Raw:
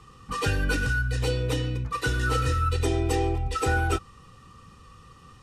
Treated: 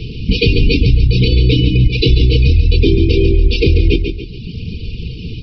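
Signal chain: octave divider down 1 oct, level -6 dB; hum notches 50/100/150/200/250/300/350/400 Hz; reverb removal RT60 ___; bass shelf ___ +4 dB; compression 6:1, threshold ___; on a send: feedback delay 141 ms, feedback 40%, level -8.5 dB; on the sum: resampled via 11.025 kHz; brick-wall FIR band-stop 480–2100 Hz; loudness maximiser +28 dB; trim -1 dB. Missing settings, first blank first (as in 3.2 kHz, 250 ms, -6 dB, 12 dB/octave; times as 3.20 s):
0.88 s, 210 Hz, -32 dBFS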